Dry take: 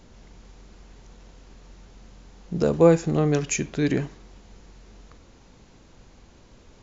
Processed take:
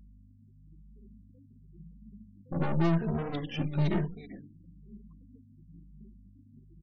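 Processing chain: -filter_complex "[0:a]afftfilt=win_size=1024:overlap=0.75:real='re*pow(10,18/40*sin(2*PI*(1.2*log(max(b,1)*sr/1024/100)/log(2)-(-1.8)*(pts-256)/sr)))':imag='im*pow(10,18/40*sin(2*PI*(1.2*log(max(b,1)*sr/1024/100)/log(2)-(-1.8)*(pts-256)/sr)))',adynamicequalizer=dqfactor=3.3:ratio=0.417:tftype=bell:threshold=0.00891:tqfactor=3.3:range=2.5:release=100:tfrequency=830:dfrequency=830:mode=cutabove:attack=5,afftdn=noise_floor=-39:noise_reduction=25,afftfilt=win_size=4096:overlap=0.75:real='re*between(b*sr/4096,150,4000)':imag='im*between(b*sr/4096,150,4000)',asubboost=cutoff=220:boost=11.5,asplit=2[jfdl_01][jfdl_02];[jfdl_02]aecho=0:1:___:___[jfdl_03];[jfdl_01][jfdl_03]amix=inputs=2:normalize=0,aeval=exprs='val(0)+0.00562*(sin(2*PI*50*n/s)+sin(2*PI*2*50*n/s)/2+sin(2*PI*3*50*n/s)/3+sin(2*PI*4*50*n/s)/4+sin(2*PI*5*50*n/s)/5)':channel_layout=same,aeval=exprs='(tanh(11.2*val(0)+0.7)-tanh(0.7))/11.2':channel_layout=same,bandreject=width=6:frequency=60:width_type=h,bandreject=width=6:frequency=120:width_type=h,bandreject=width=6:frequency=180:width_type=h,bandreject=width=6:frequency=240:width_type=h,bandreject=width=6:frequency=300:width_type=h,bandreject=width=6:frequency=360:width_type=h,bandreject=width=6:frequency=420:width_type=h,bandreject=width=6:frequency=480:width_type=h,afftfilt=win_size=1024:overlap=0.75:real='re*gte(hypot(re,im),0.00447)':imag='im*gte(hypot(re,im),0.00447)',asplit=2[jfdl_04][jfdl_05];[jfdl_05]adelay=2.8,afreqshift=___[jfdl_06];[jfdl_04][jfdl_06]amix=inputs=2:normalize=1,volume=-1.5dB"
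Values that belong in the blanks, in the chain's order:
386, 0.133, 0.99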